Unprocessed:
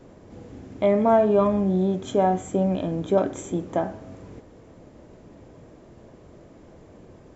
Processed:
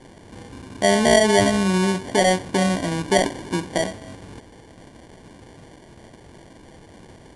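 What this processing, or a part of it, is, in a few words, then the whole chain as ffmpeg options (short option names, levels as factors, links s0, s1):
crushed at another speed: -af "asetrate=88200,aresample=44100,acrusher=samples=17:mix=1:aa=0.000001,asetrate=22050,aresample=44100,volume=1.33"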